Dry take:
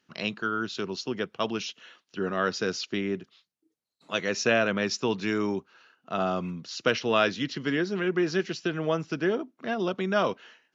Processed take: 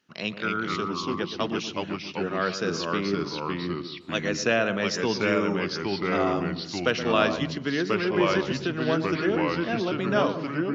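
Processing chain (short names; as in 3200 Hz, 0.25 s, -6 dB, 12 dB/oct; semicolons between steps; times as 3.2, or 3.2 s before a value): darkening echo 0.121 s, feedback 39%, low-pass 1400 Hz, level -10.5 dB; echoes that change speed 0.198 s, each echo -2 st, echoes 2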